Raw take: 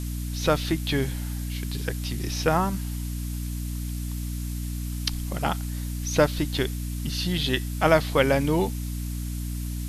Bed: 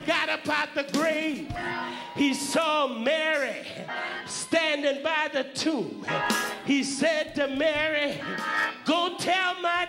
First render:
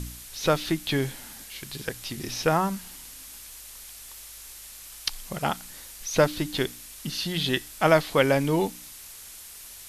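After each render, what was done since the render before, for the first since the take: de-hum 60 Hz, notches 5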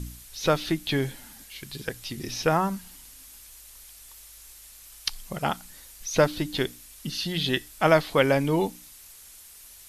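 noise reduction 6 dB, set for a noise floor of -44 dBFS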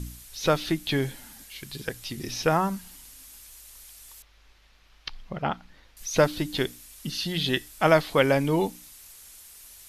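4.22–5.97 s: distance through air 270 m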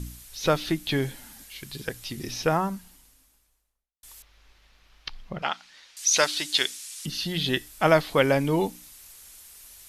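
2.22–4.03 s: studio fade out; 5.42–7.06 s: frequency weighting ITU-R 468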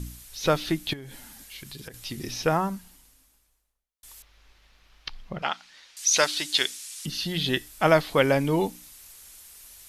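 0.93–1.94 s: compression 12:1, threshold -36 dBFS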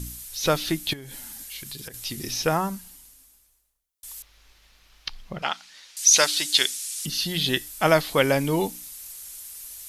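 treble shelf 4.7 kHz +10 dB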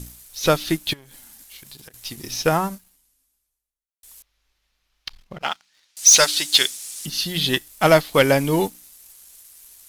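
waveshaping leveller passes 2; upward expansion 1.5:1, over -29 dBFS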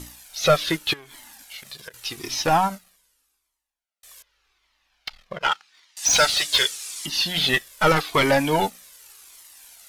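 overdrive pedal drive 19 dB, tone 2.7 kHz, clips at -3.5 dBFS; Shepard-style flanger falling 0.85 Hz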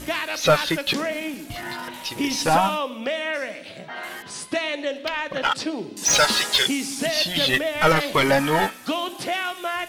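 add bed -1.5 dB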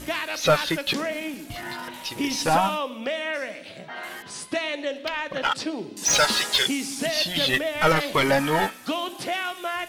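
trim -2 dB

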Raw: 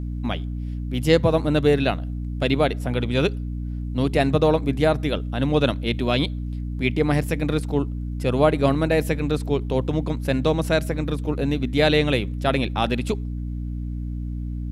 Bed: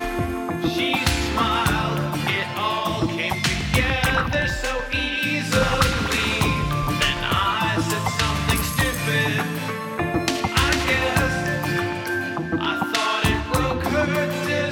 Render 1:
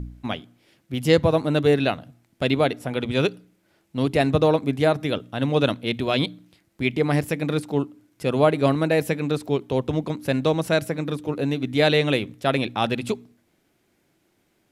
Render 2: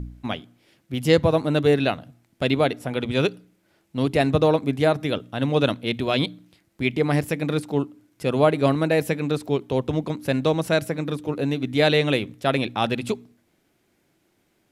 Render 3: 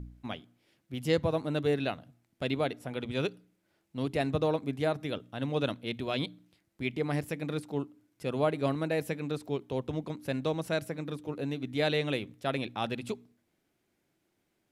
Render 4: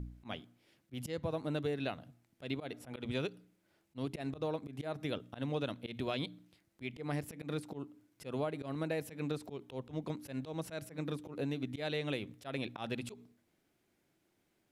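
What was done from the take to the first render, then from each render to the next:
de-hum 60 Hz, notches 5
no audible change
trim -10 dB
compression 8:1, threshold -32 dBFS, peak gain reduction 11 dB; slow attack 102 ms

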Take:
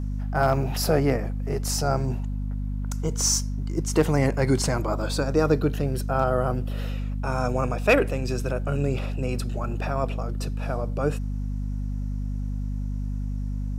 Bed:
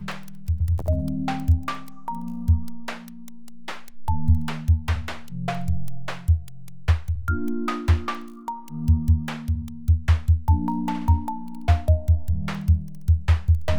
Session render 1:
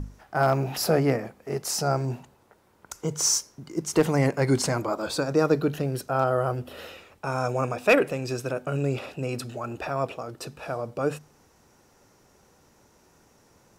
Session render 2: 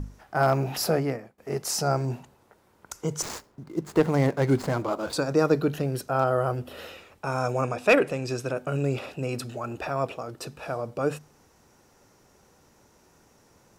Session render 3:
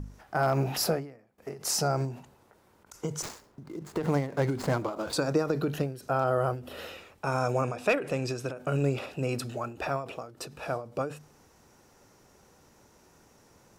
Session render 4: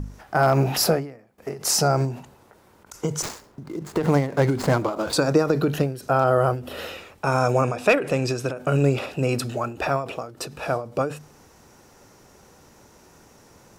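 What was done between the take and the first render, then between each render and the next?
hum notches 50/100/150/200/250 Hz
0.79–1.38 s: fade out, to -22 dB; 3.22–5.13 s: median filter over 15 samples; 7.62–8.57 s: low-pass 11 kHz
peak limiter -15 dBFS, peak gain reduction 5.5 dB; endings held to a fixed fall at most 120 dB/s
trim +7.5 dB

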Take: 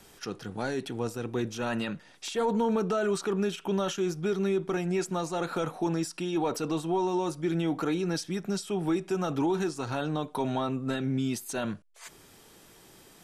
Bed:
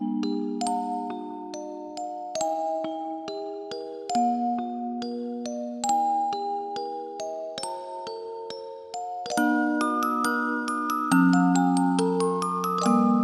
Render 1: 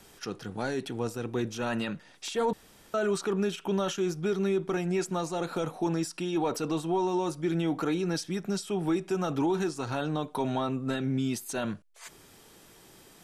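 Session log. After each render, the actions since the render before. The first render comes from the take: 2.53–2.94 s: room tone; 5.24–5.83 s: dynamic bell 1.5 kHz, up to -4 dB, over -45 dBFS, Q 1.1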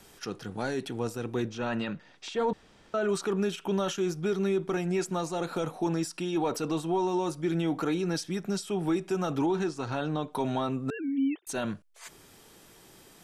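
1.46–3.09 s: distance through air 100 m; 9.46–10.33 s: distance through air 53 m; 10.90–11.47 s: formants replaced by sine waves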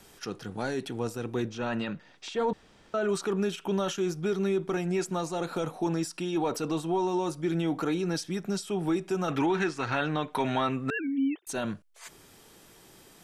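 9.28–11.07 s: peaking EQ 2 kHz +12.5 dB 1.3 oct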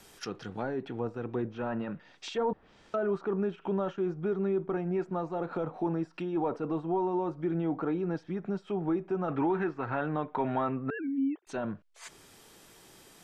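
low-pass that closes with the level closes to 1.2 kHz, closed at -28.5 dBFS; bass shelf 420 Hz -3 dB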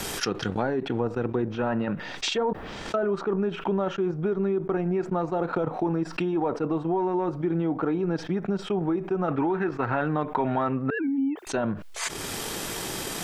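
transient shaper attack +5 dB, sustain -12 dB; level flattener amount 70%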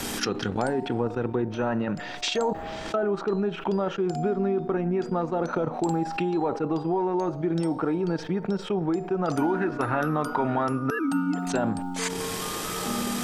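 add bed -10 dB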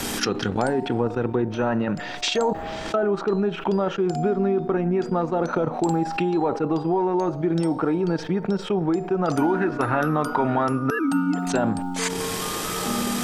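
trim +3.5 dB

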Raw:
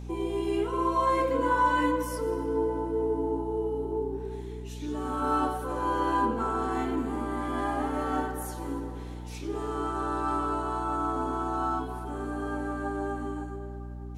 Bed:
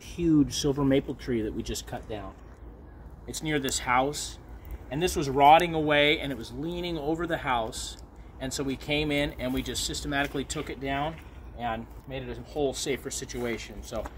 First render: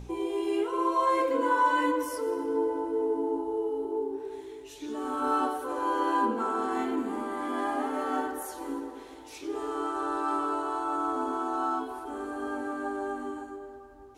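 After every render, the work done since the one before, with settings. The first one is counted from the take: de-hum 60 Hz, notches 5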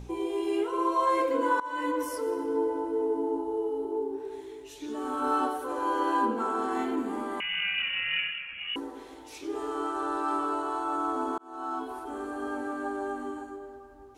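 1.60–2.02 s: fade in, from -20.5 dB; 7.40–8.76 s: frequency inversion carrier 3.2 kHz; 11.38–11.91 s: fade in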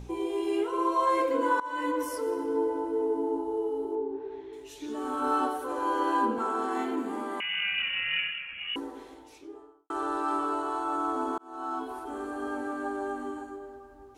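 3.95–4.53 s: distance through air 250 m; 6.38–7.72 s: Bessel high-pass 190 Hz; 8.86–9.90 s: studio fade out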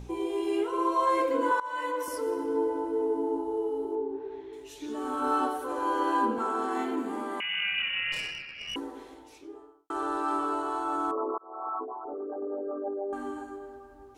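1.51–2.08 s: high-pass 410 Hz 24 dB/octave; 8.12–8.75 s: valve stage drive 29 dB, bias 0.55; 11.11–13.13 s: resonances exaggerated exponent 3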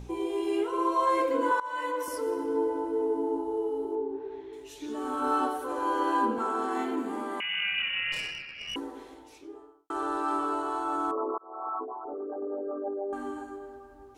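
no audible change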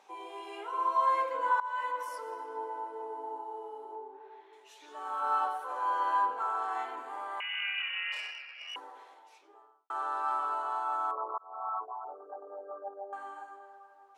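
high-pass 750 Hz 24 dB/octave; tilt EQ -3.5 dB/octave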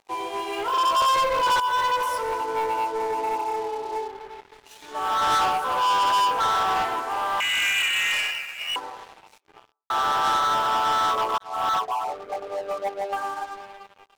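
waveshaping leveller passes 5; upward expansion 1.5:1, over -31 dBFS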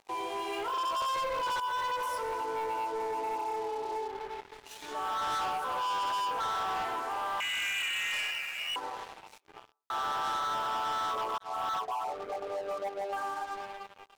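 compression 4:1, threshold -31 dBFS, peak gain reduction 10 dB; peak limiter -29.5 dBFS, peak gain reduction 6 dB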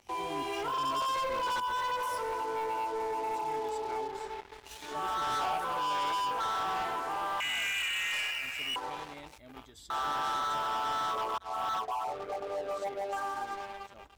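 add bed -22.5 dB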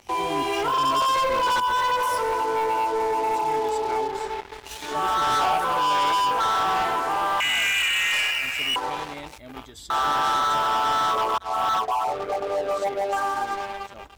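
trim +10 dB

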